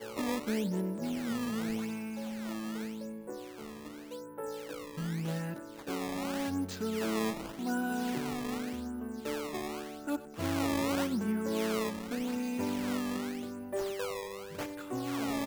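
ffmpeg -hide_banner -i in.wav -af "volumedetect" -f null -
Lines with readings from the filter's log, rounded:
mean_volume: -35.2 dB
max_volume: -22.1 dB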